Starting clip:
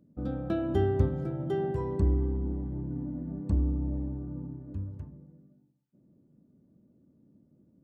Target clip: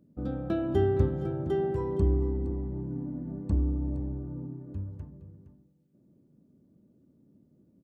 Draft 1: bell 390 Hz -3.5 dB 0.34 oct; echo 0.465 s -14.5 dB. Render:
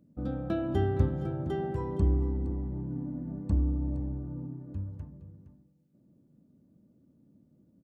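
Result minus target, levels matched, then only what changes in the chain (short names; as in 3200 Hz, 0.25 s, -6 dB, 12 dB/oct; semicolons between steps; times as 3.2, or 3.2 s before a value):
500 Hz band -4.0 dB
change: bell 390 Hz +2.5 dB 0.34 oct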